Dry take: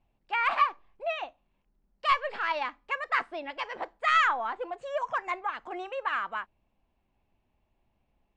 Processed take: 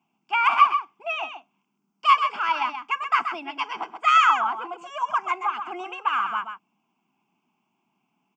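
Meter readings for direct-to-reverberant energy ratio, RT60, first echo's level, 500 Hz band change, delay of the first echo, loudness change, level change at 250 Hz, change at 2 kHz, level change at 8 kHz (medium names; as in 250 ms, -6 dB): no reverb, no reverb, -8.0 dB, -3.5 dB, 129 ms, +7.0 dB, +4.0 dB, +3.5 dB, no reading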